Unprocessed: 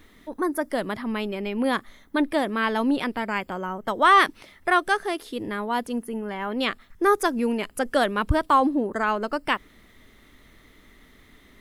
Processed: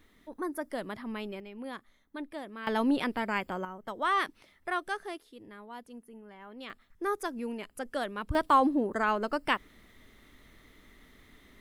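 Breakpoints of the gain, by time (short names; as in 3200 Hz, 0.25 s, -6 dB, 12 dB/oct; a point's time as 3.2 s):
-9.5 dB
from 1.4 s -17 dB
from 2.67 s -4 dB
from 3.65 s -12 dB
from 5.18 s -19 dB
from 6.7 s -12 dB
from 8.35 s -4 dB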